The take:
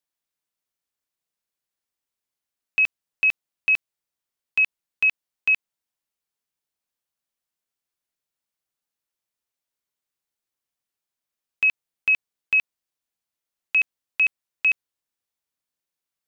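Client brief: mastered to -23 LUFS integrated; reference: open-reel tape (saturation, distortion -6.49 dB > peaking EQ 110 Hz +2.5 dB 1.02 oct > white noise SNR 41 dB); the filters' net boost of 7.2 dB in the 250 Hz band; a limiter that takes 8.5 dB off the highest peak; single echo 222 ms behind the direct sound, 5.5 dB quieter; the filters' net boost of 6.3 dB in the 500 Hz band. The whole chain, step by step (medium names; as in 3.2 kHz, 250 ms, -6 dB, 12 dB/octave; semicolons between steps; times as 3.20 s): peaking EQ 250 Hz +7 dB; peaking EQ 500 Hz +6 dB; peak limiter -21 dBFS; delay 222 ms -5.5 dB; saturation -39 dBFS; peaking EQ 110 Hz +2.5 dB 1.02 oct; white noise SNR 41 dB; trim +19.5 dB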